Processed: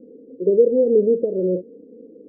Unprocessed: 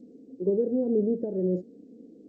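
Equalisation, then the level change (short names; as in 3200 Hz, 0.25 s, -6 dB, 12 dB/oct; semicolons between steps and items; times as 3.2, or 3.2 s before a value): synth low-pass 500 Hz, resonance Q 4.9; 0.0 dB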